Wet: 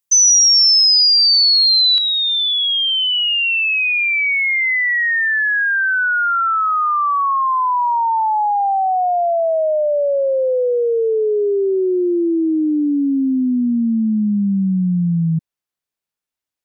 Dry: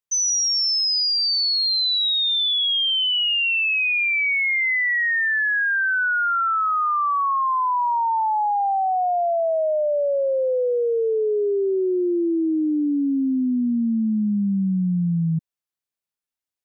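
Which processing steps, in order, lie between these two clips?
treble shelf 5.2 kHz +10 dB, from 1.98 s -3.5 dB; trim +4.5 dB

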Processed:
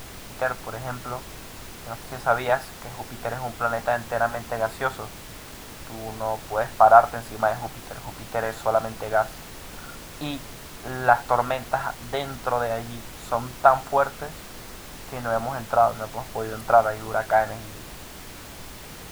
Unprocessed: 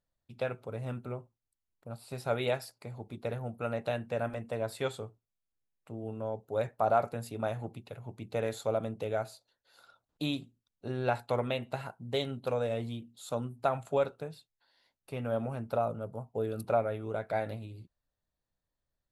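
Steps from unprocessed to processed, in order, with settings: high-order bell 1.1 kHz +15 dB; added noise pink -41 dBFS; trim +1 dB

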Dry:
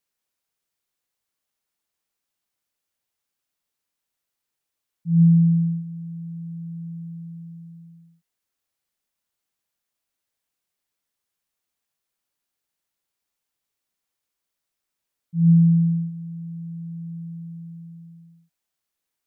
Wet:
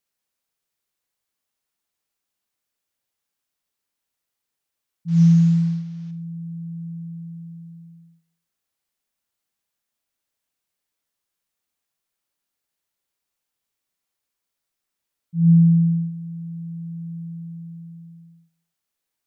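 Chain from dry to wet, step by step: 5.08–6.11 s: CVSD coder 32 kbps; Schroeder reverb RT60 0.51 s, combs from 28 ms, DRR 9 dB

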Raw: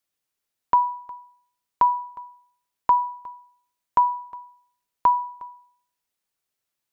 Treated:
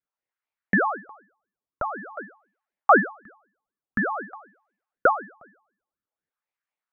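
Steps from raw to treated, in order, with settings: wah-wah 0.49 Hz 350–1600 Hz, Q 3.5; ring modulator with a swept carrier 440 Hz, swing 80%, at 4 Hz; trim +7 dB

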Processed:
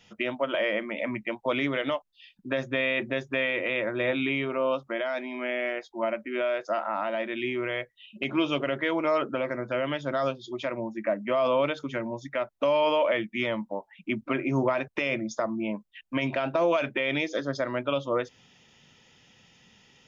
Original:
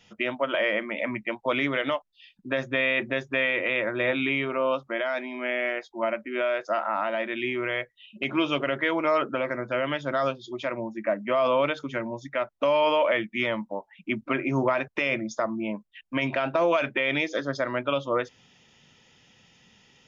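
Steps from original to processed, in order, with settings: dynamic bell 1.6 kHz, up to -4 dB, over -35 dBFS, Q 0.71

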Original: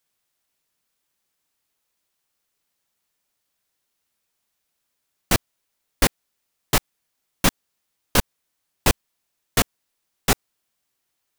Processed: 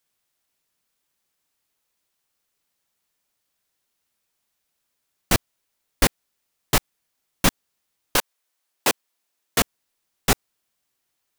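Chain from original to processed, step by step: 8.16–9.59 s: high-pass 550 Hz -> 190 Hz 12 dB/octave

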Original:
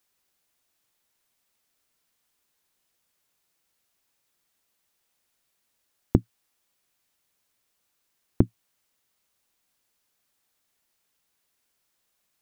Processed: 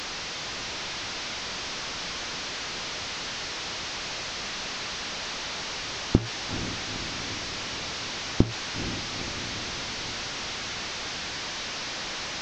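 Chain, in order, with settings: one-bit delta coder 32 kbps, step -27.5 dBFS; echo that smears into a reverb 466 ms, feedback 65%, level -9.5 dB

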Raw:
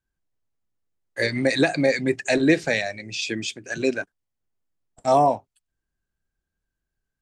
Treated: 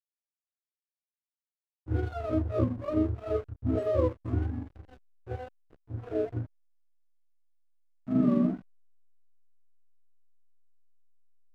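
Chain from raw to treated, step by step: spectrum inverted on a logarithmic axis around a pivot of 410 Hz; granular stretch 1.6×, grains 85 ms; hysteresis with a dead band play -32 dBFS; trim -5.5 dB

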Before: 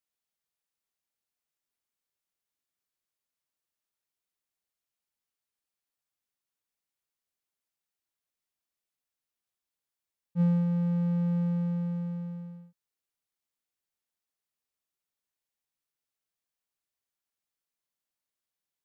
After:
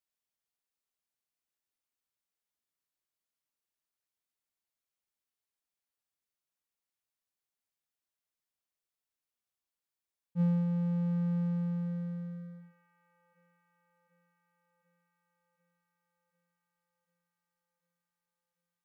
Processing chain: feedback echo behind a band-pass 743 ms, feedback 71%, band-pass 990 Hz, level -12 dB; trim -3.5 dB

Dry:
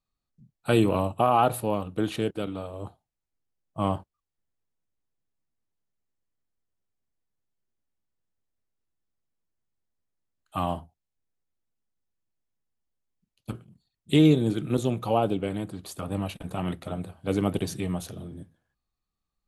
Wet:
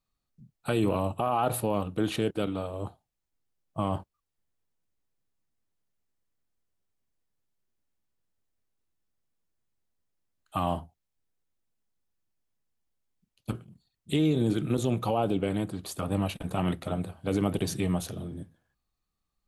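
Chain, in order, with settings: peak limiter -18.5 dBFS, peak gain reduction 9.5 dB; trim +2 dB

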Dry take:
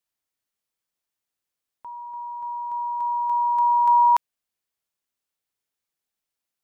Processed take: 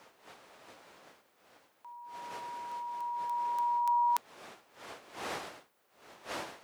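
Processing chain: wind noise 600 Hz -33 dBFS; differentiator; trim +5.5 dB

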